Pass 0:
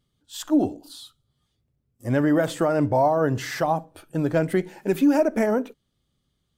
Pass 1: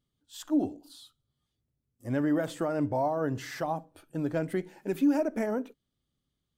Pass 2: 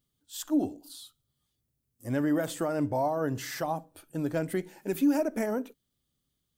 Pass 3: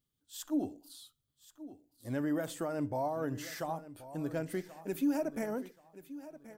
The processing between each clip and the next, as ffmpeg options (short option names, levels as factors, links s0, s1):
-af "equalizer=f=280:w=3.7:g=3.5,volume=0.355"
-af "crystalizer=i=1.5:c=0"
-af "aecho=1:1:1080|2160|3240:0.168|0.0453|0.0122,volume=0.501"